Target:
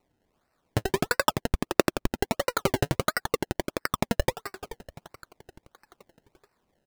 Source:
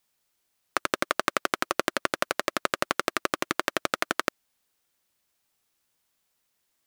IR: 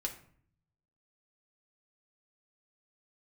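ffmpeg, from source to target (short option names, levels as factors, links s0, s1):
-filter_complex "[0:a]aecho=1:1:431|862|1293|1724|2155:0.15|0.0838|0.0469|0.0263|0.0147,aresample=32000,aresample=44100,asettb=1/sr,asplit=3[s0][s1][s2];[s0]atrim=end=2.894[s3];[s1]atrim=start=2.89:end=4.01,asetpts=PTS-STARTPTS,afade=t=in:d=0.004:c=qsin,afade=t=out:st=1.116:d=0.004:c=qsin,tiltshelf=f=730:g=-6[s4];[s2]atrim=start=4.006[s5];[s3][s4]acrossfade=d=0.004:c1=hsin:c2=qsin[s6];[s6][s5]acrossfade=d=0.004:c1=qsin:c2=hsin,alimiter=limit=0.794:level=0:latency=1:release=22,aphaser=in_gain=1:out_gain=1:delay=2.7:decay=0.79:speed=0.55:type=triangular,acrossover=split=560|2600[s7][s8][s9];[s9]acompressor=threshold=0.00794:ratio=6[s10];[s7][s8][s10]amix=inputs=3:normalize=0,acrusher=samples=26:mix=1:aa=0.000001:lfo=1:lforange=26:lforate=1.5,volume=0.891"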